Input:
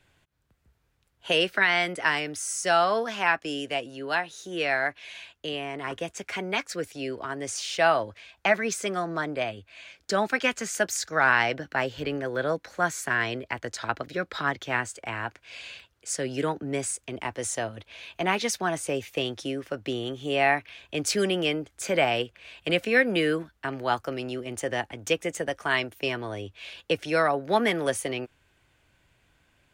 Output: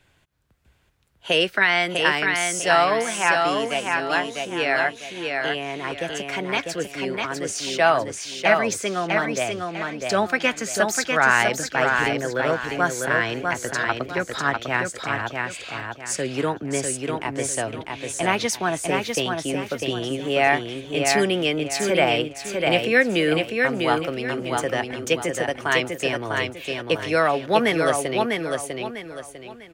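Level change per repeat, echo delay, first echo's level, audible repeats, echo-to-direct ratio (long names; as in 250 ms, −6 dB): −9.5 dB, 649 ms, −4.0 dB, 4, −3.5 dB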